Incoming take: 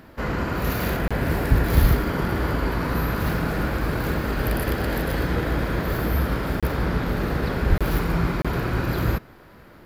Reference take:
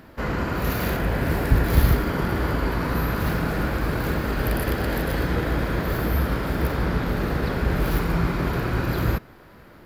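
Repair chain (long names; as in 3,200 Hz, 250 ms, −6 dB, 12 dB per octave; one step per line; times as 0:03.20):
high-pass at the plosives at 0:01.80/0:07.69
repair the gap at 0:01.08/0:06.60/0:07.78/0:08.42, 26 ms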